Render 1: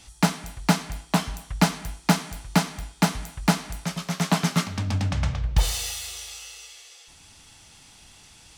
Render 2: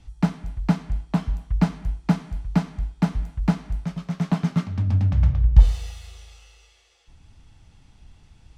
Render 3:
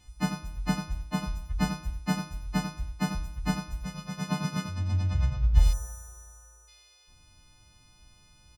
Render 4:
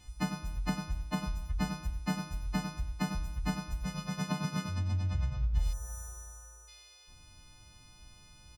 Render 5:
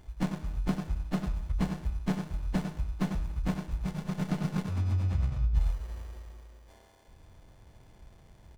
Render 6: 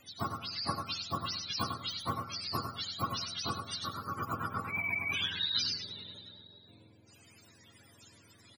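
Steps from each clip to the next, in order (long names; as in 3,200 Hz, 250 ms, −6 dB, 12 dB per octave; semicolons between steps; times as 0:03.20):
RIAA equalisation playback; level −7.5 dB
every partial snapped to a pitch grid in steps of 3 semitones; single-tap delay 90 ms −8 dB; gain on a spectral selection 0:05.73–0:06.68, 1,800–5,400 Hz −28 dB; level −6 dB
downward compressor 2.5 to 1, threshold −34 dBFS, peak gain reduction 14 dB; level +2 dB
windowed peak hold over 33 samples; level +3.5 dB
frequency axis turned over on the octave scale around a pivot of 460 Hz; single-tap delay 104 ms −10.5 dB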